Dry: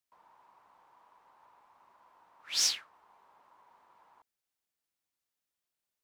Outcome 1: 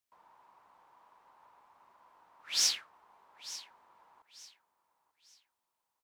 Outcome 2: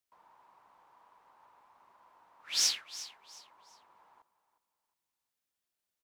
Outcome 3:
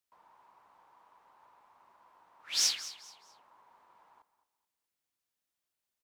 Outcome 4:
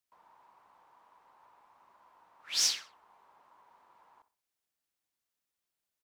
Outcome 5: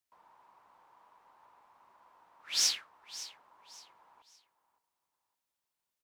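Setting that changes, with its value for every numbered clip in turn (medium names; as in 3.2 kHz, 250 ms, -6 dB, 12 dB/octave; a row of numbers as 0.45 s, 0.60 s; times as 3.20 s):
feedback delay, time: 892 ms, 359 ms, 215 ms, 63 ms, 564 ms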